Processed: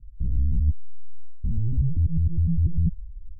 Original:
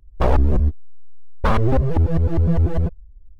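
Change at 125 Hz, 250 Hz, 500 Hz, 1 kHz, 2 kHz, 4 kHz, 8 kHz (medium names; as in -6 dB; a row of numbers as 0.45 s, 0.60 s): -4.5 dB, -7.5 dB, under -30 dB, under -40 dB, under -40 dB, under -40 dB, no reading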